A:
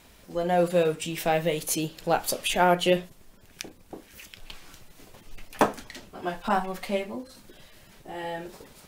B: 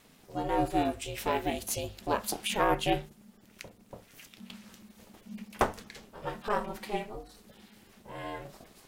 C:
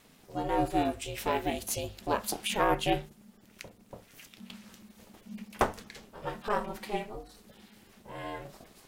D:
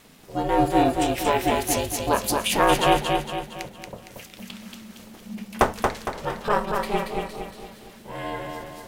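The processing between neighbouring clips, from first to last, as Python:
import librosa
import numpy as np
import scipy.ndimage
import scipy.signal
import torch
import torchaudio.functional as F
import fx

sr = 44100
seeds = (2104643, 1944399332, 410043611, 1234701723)

y1 = x * np.sin(2.0 * np.pi * 210.0 * np.arange(len(x)) / sr)
y1 = fx.hum_notches(y1, sr, base_hz=50, count=3)
y1 = F.gain(torch.from_numpy(y1), -2.5).numpy()
y2 = y1
y3 = fx.echo_feedback(y2, sr, ms=230, feedback_pct=46, wet_db=-4)
y3 = F.gain(torch.from_numpy(y3), 7.5).numpy()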